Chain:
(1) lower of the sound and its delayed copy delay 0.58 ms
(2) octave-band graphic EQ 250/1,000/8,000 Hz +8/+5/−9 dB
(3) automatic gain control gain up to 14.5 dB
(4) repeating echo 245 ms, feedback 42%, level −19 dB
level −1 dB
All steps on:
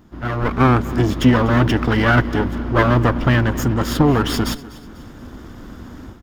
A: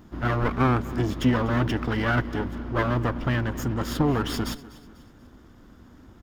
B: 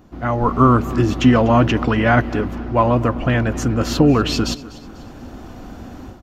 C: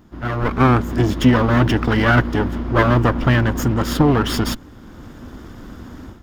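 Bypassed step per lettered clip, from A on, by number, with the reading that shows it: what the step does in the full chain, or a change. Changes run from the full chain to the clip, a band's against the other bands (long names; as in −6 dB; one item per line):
3, change in momentary loudness spread −2 LU
1, 2 kHz band −3.5 dB
4, echo-to-direct ratio −18.0 dB to none audible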